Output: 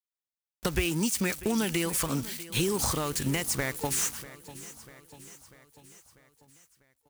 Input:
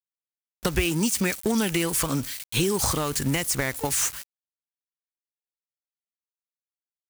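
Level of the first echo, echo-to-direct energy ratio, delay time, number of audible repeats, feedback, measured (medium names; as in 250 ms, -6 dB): -17.0 dB, -15.5 dB, 644 ms, 4, 57%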